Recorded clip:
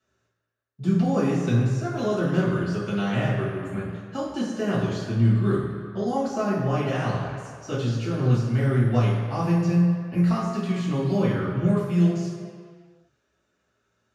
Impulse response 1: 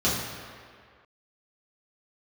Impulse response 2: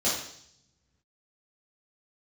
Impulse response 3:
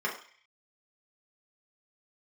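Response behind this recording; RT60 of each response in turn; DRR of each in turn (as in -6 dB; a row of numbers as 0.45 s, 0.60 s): 1; 2.0 s, 0.65 s, 0.45 s; -9.0 dB, -10.0 dB, -4.0 dB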